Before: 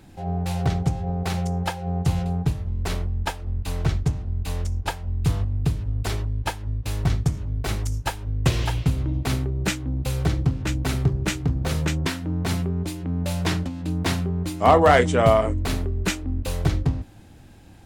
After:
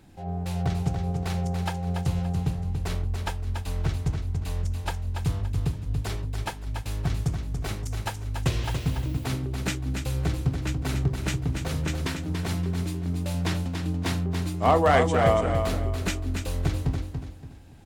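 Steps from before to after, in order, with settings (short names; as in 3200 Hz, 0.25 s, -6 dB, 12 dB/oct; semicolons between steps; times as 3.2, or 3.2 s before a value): feedback echo 0.285 s, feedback 32%, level -6.5 dB; 8.63–9.24 added noise violet -51 dBFS; gain -5 dB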